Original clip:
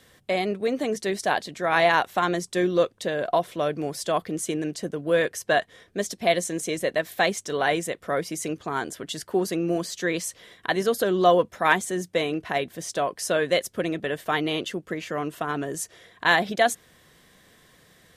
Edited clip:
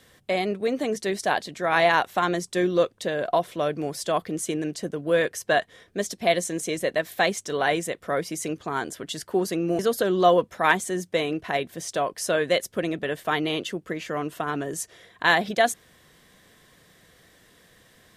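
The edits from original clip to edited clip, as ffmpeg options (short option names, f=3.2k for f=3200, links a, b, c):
-filter_complex "[0:a]asplit=2[a][b];[a]atrim=end=9.792[c];[b]atrim=start=10.798[d];[c][d]acrossfade=d=0.004:c1=hsin:c2=hsin"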